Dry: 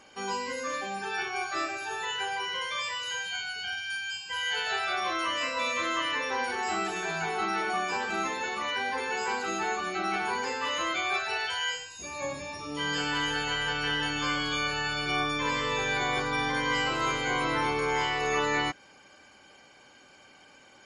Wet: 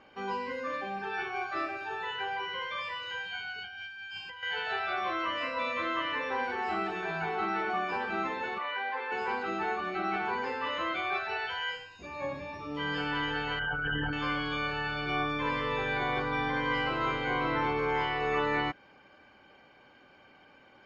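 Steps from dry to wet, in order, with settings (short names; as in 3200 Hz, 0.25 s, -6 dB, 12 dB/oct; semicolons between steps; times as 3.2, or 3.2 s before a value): 13.59–14.13 formant sharpening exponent 3; air absorption 310 m; 3.58–4.43 negative-ratio compressor -43 dBFS, ratio -1; 8.58–9.12 BPF 560–3700 Hz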